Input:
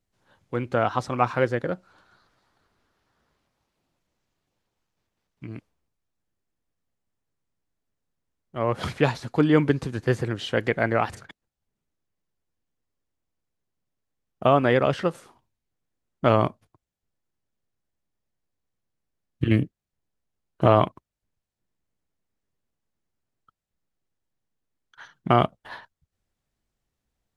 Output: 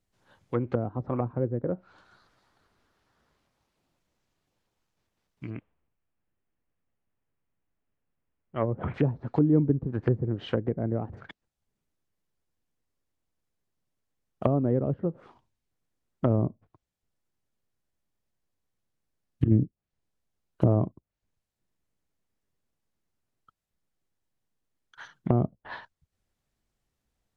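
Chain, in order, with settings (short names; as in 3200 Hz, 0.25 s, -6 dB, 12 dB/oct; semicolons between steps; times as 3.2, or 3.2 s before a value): 5.5–8.94 steep low-pass 3000 Hz 36 dB/oct; treble ducked by the level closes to 330 Hz, closed at -21 dBFS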